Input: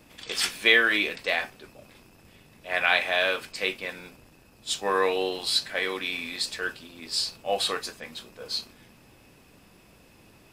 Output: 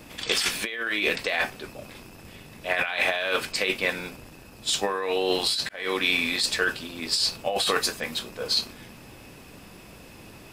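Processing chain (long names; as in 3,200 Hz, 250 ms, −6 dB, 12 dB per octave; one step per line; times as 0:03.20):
0:07.63–0:08.19: high-shelf EQ 11,000 Hz +6 dB
compressor whose output falls as the input rises −30 dBFS, ratio −1
0:05.69–0:06.22: fade in equal-power
level +5 dB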